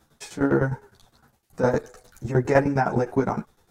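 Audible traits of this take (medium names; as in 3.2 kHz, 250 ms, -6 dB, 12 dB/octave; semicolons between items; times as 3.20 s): tremolo saw down 9.8 Hz, depth 85%; a shimmering, thickened sound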